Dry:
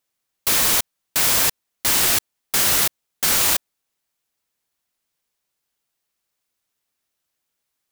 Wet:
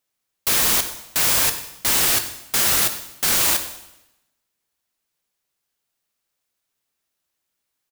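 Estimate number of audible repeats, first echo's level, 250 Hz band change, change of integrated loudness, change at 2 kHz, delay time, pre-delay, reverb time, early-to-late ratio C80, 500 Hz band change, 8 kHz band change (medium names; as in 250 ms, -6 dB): 1, -17.0 dB, 0.0 dB, -0.5 dB, -0.5 dB, 99 ms, 10 ms, 0.90 s, 11.5 dB, 0.0 dB, -0.5 dB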